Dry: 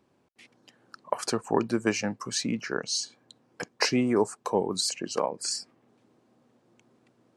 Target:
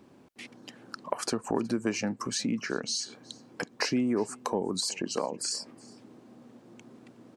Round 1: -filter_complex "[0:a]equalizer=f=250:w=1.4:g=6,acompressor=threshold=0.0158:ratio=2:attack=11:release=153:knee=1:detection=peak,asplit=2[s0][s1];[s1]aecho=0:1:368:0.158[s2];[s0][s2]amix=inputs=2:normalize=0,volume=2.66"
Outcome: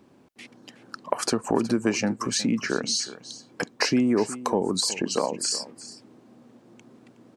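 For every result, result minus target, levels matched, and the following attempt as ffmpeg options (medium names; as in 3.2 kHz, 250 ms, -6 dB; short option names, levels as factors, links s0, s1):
compression: peak gain reduction -5.5 dB; echo-to-direct +8 dB
-filter_complex "[0:a]equalizer=f=250:w=1.4:g=6,acompressor=threshold=0.00422:ratio=2:attack=11:release=153:knee=1:detection=peak,asplit=2[s0][s1];[s1]aecho=0:1:368:0.158[s2];[s0][s2]amix=inputs=2:normalize=0,volume=2.66"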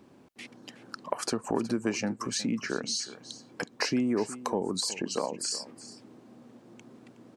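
echo-to-direct +8 dB
-filter_complex "[0:a]equalizer=f=250:w=1.4:g=6,acompressor=threshold=0.00422:ratio=2:attack=11:release=153:knee=1:detection=peak,asplit=2[s0][s1];[s1]aecho=0:1:368:0.0631[s2];[s0][s2]amix=inputs=2:normalize=0,volume=2.66"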